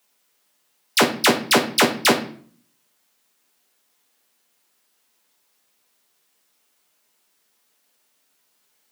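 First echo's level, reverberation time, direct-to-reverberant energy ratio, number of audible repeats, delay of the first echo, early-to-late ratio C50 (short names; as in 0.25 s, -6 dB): none, 0.50 s, 3.0 dB, none, none, 11.0 dB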